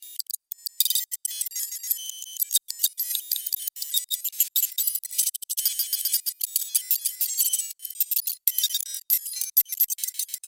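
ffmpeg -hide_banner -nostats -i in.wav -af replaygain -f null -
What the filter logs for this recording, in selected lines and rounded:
track_gain = +8.4 dB
track_peak = 0.491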